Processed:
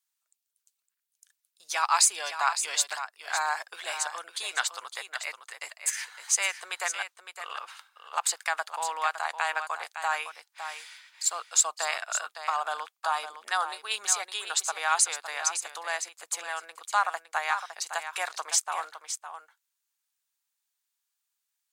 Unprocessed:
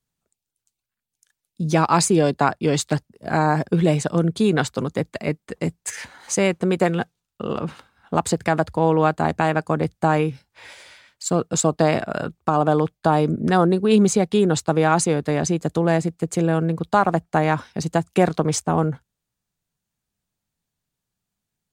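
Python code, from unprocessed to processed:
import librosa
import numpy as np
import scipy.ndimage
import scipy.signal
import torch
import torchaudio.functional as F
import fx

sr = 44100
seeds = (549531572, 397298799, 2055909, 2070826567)

y = scipy.signal.sosfilt(scipy.signal.butter(4, 900.0, 'highpass', fs=sr, output='sos'), x)
y = fx.tilt_eq(y, sr, slope=2.0)
y = y + 10.0 ** (-9.5 / 20.0) * np.pad(y, (int(560 * sr / 1000.0), 0))[:len(y)]
y = y * librosa.db_to_amplitude(-4.0)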